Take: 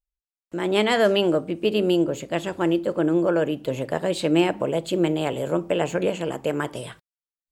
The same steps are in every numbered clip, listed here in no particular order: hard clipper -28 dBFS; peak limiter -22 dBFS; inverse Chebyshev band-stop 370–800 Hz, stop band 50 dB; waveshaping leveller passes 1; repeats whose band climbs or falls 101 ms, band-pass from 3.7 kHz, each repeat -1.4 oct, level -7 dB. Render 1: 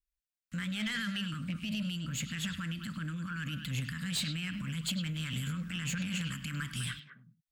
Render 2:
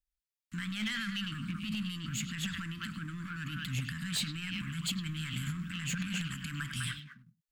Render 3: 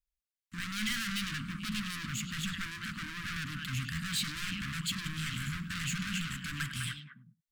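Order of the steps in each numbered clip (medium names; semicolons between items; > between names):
peak limiter > inverse Chebyshev band-stop > hard clipper > waveshaping leveller > repeats whose band climbs or falls; repeats whose band climbs or falls > peak limiter > waveshaping leveller > inverse Chebyshev band-stop > hard clipper; waveshaping leveller > repeats whose band climbs or falls > hard clipper > peak limiter > inverse Chebyshev band-stop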